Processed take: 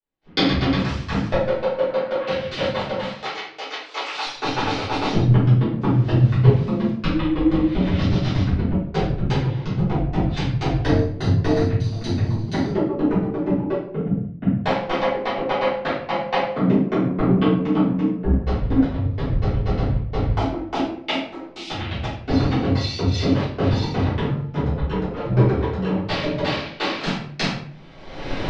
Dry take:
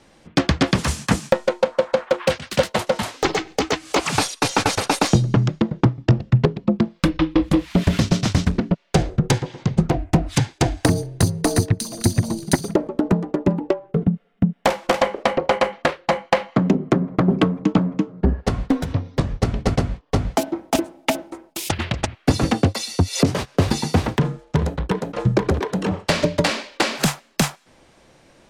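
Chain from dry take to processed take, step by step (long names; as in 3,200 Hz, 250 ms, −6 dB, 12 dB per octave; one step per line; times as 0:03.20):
0:05.81–0:06.91: spike at every zero crossing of −21.5 dBFS
camcorder AGC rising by 36 dB per second
0:03.02–0:04.25: high-pass filter 760 Hz 12 dB per octave
noise gate with hold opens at −35 dBFS
low-pass filter 4,500 Hz 24 dB per octave
convolution reverb RT60 0.65 s, pre-delay 3 ms, DRR −11.5 dB
multiband upward and downward expander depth 40%
level −15 dB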